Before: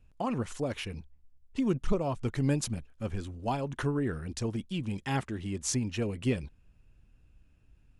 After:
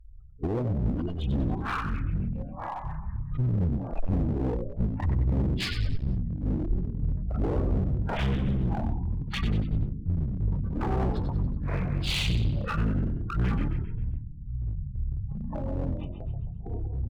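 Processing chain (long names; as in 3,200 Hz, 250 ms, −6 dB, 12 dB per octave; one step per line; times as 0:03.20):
spectral magnitudes quantised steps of 30 dB
in parallel at −1 dB: downward compressor 12 to 1, threshold −40 dBFS, peak gain reduction 20 dB
on the sum: change of speed 0.468×
gate on every frequency bin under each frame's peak −20 dB strong
dynamic equaliser 1,200 Hz, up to +6 dB, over −53 dBFS, Q 2
on a send: echo with shifted repeats 94 ms, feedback 42%, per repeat +51 Hz, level −8 dB
on the sum: delay with pitch and tempo change per echo 239 ms, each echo −6 semitones, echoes 2, each echo −6 dB
asymmetric clip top −32.5 dBFS, bottom −23 dBFS
low-shelf EQ 88 Hz +7 dB
level +2 dB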